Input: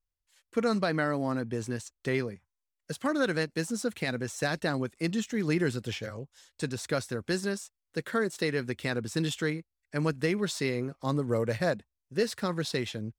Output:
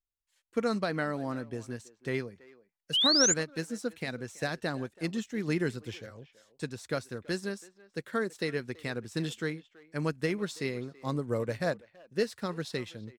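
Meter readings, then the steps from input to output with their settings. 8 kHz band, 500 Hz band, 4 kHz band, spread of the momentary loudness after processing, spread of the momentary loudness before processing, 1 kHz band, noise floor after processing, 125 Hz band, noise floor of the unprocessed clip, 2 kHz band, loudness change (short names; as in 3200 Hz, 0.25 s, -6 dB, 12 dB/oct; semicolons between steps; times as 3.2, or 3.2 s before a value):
+6.5 dB, -2.5 dB, +6.5 dB, 11 LU, 9 LU, -2.5 dB, -78 dBFS, -4.0 dB, under -85 dBFS, -3.0 dB, -1.0 dB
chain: speakerphone echo 0.33 s, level -15 dB; painted sound rise, 2.93–3.34, 2800–7400 Hz -24 dBFS; upward expander 1.5:1, over -38 dBFS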